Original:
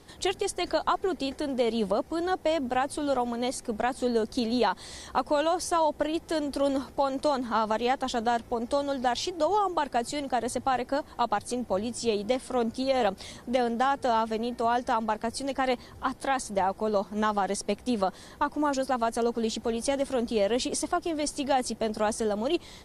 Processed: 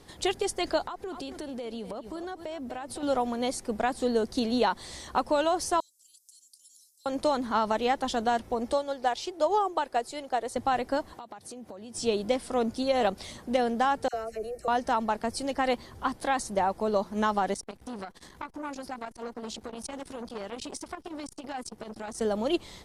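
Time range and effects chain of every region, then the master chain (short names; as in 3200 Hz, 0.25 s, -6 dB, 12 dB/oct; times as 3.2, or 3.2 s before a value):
0.86–3.03 echo 0.244 s -15.5 dB + compressor, threshold -34 dBFS
5.8–7.06 inverse Chebyshev high-pass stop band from 1900 Hz, stop band 60 dB + compressor, threshold -50 dBFS
8.73–10.56 resonant low shelf 290 Hz -6.5 dB, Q 1.5 + upward expander, over -33 dBFS
11.13–11.95 HPF 110 Hz + compressor 12:1, threshold -39 dBFS
14.08–14.68 bell 1300 Hz -10 dB 1.4 oct + fixed phaser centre 930 Hz, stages 6 + dispersion lows, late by 55 ms, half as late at 1500 Hz
17.54–22.21 bell 580 Hz -7 dB 0.3 oct + compressor 2:1, threshold -35 dBFS + core saturation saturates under 1200 Hz
whole clip: dry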